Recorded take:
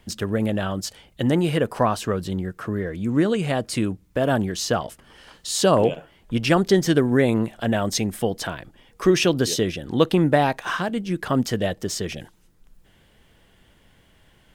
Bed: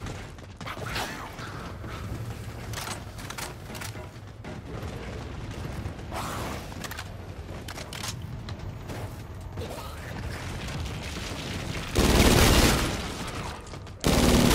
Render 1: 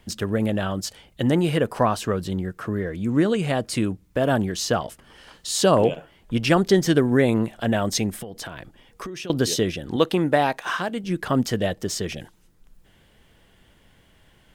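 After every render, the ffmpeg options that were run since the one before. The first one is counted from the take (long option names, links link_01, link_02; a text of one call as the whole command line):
ffmpeg -i in.wav -filter_complex "[0:a]asettb=1/sr,asplit=3[link_01][link_02][link_03];[link_01]atrim=end=8.104[link_04];[link_02]atrim=start=8.1:end=9.3,asetpts=PTS-STARTPTS,afade=type=in:duration=0.004:curve=qsin,afade=type=out:start_time=1.196:duration=0.004:curve=qsin,acompressor=threshold=-30dB:ratio=16:attack=3.2:release=140:knee=1:detection=peak[link_05];[link_03]atrim=start=9.296[link_06];[link_04][link_05]acrossfade=duration=0.004:curve1=hsin:curve2=qsin[link_07];[link_07][link_06]acrossfade=duration=0.004:curve1=qsin:curve2=hsin,asettb=1/sr,asplit=3[link_08][link_09][link_10];[link_08]atrim=end=9.964[link_11];[link_09]atrim=start=9.96:end=11.04,asetpts=PTS-STARTPTS,afade=type=in:duration=0.004:curve=qsin,afade=type=out:start_time=1.076:duration=0.004:curve=qsin,lowshelf=frequency=170:gain=-10.5[link_12];[link_10]atrim=start=11.036[link_13];[link_11][link_12]acrossfade=duration=0.004:curve1=hsin:curve2=qsin[link_14];[link_14][link_13]acrossfade=duration=0.004:curve1=qsin:curve2=hsin" out.wav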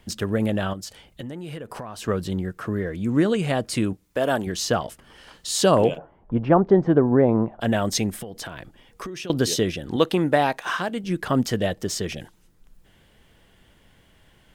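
ffmpeg -i in.wav -filter_complex "[0:a]asettb=1/sr,asplit=3[link_01][link_02][link_03];[link_01]atrim=end=0.734[link_04];[link_02]atrim=start=0.73:end=2.08,asetpts=PTS-STARTPTS,afade=type=in:duration=0.004:curve=qsin,afade=type=out:start_time=1.346:duration=0.004:curve=qsin,acompressor=threshold=-31dB:ratio=10:attack=3.2:release=140:knee=1:detection=peak[link_05];[link_03]atrim=start=2.076[link_06];[link_04][link_05]acrossfade=duration=0.004:curve1=hsin:curve2=qsin[link_07];[link_07][link_06]acrossfade=duration=0.004:curve1=qsin:curve2=hsin,asettb=1/sr,asplit=3[link_08][link_09][link_10];[link_08]atrim=end=3.934[link_11];[link_09]atrim=start=3.93:end=4.47,asetpts=PTS-STARTPTS,afade=type=in:duration=0.004:curve=qsin,afade=type=out:start_time=0.536:duration=0.004:curve=qsin,bass=frequency=250:gain=-10,treble=frequency=4000:gain=3[link_12];[link_10]atrim=start=4.466[link_13];[link_11][link_12]acrossfade=duration=0.004:curve1=hsin:curve2=qsin[link_14];[link_14][link_13]acrossfade=duration=0.004:curve1=qsin:curve2=hsin,asplit=3[link_15][link_16][link_17];[link_15]afade=type=out:start_time=5.97:duration=0.02[link_18];[link_16]lowpass=frequency=920:width_type=q:width=1.7,afade=type=in:start_time=5.97:duration=0.02,afade=type=out:start_time=7.6:duration=0.02[link_19];[link_17]afade=type=in:start_time=7.6:duration=0.02[link_20];[link_18][link_19][link_20]amix=inputs=3:normalize=0" out.wav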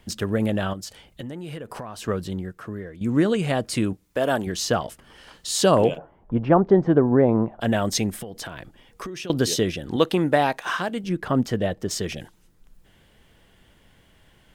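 ffmpeg -i in.wav -filter_complex "[0:a]asettb=1/sr,asplit=3[link_01][link_02][link_03];[link_01]atrim=end=11.094[link_04];[link_02]atrim=start=11.09:end=11.91,asetpts=PTS-STARTPTS,afade=type=in:duration=0.004:curve=qsin,afade=type=out:start_time=0.816:duration=0.004:curve=qsin,highshelf=frequency=2600:gain=-8.5[link_05];[link_03]atrim=start=11.906[link_06];[link_04][link_05]acrossfade=duration=0.004:curve1=hsin:curve2=qsin[link_07];[link_07][link_06]acrossfade=duration=0.004:curve1=qsin:curve2=hsin,asplit=2[link_08][link_09];[link_08]atrim=end=3.01,asetpts=PTS-STARTPTS,afade=type=out:start_time=1.89:duration=1.12:silence=0.266073[link_10];[link_09]atrim=start=3.01,asetpts=PTS-STARTPTS,afade=type=in:duration=0.004:curve=hsin:silence=0.266073[link_11];[link_10][link_11]concat=n=2:v=0:a=1" out.wav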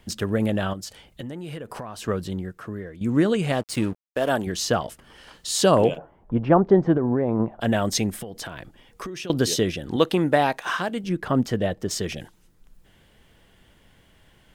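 ffmpeg -i in.wav -filter_complex "[0:a]asettb=1/sr,asplit=3[link_01][link_02][link_03];[link_01]atrim=end=3.524[link_04];[link_02]atrim=start=3.52:end=4.29,asetpts=PTS-STARTPTS,afade=type=in:duration=0.004:curve=qsin,afade=type=out:start_time=0.766:duration=0.004:curve=qsin,aeval=exprs='sgn(val(0))*max(abs(val(0))-0.0119,0)':channel_layout=same[link_05];[link_03]atrim=start=4.286[link_06];[link_04][link_05]acrossfade=duration=0.004:curve1=hsin:curve2=qsin[link_07];[link_07][link_06]acrossfade=duration=0.004:curve1=qsin:curve2=hsin,asettb=1/sr,asplit=3[link_08][link_09][link_10];[link_08]atrim=end=6.934[link_11];[link_09]atrim=start=6.93:end=7.4,asetpts=PTS-STARTPTS,afade=type=in:duration=0.004:curve=qsin,afade=type=out:start_time=0.466:duration=0.004:curve=qsin,acompressor=threshold=-18dB:ratio=6:attack=3.2:release=140:knee=1:detection=peak[link_12];[link_10]atrim=start=7.396[link_13];[link_11][link_12]acrossfade=duration=0.004:curve1=hsin:curve2=qsin[link_14];[link_14][link_13]acrossfade=duration=0.004:curve1=qsin:curve2=hsin" out.wav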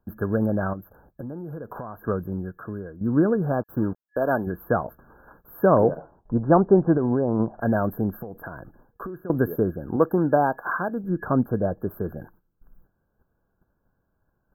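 ffmpeg -i in.wav -af "agate=range=-15dB:threshold=-52dB:ratio=16:detection=peak,afftfilt=real='re*(1-between(b*sr/4096,1700,12000))':imag='im*(1-between(b*sr/4096,1700,12000))':win_size=4096:overlap=0.75" out.wav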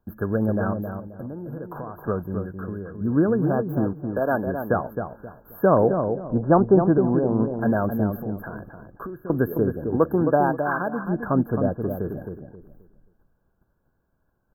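ffmpeg -i in.wav -filter_complex "[0:a]asplit=2[link_01][link_02];[link_02]adelay=265,lowpass=frequency=1000:poles=1,volume=-5.5dB,asplit=2[link_03][link_04];[link_04]adelay=265,lowpass=frequency=1000:poles=1,volume=0.31,asplit=2[link_05][link_06];[link_06]adelay=265,lowpass=frequency=1000:poles=1,volume=0.31,asplit=2[link_07][link_08];[link_08]adelay=265,lowpass=frequency=1000:poles=1,volume=0.31[link_09];[link_01][link_03][link_05][link_07][link_09]amix=inputs=5:normalize=0" out.wav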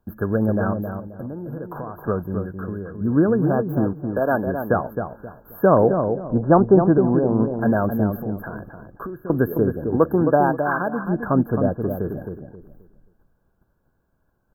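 ffmpeg -i in.wav -af "volume=2.5dB" out.wav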